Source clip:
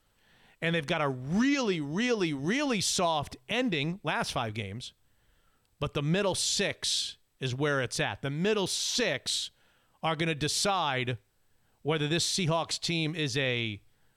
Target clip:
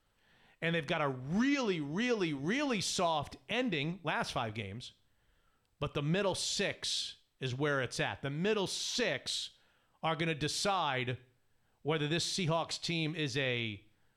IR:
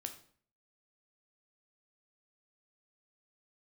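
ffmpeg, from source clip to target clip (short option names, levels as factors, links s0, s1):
-filter_complex "[0:a]highshelf=f=5700:g=-7.5,asplit=2[s0][s1];[1:a]atrim=start_sample=2205,lowshelf=f=350:g=-9[s2];[s1][s2]afir=irnorm=-1:irlink=0,volume=0.596[s3];[s0][s3]amix=inputs=2:normalize=0,volume=0.501"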